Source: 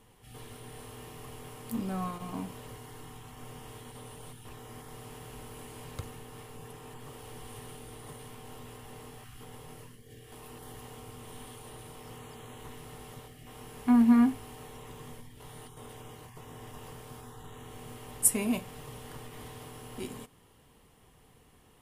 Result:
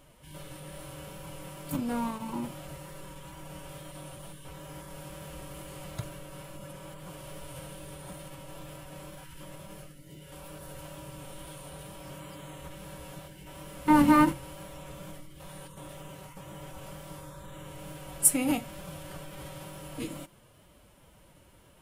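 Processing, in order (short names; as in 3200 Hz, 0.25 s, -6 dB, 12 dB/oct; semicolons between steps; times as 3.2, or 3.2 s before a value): formant-preserving pitch shift +4 st; wow and flutter 19 cents; gain +3 dB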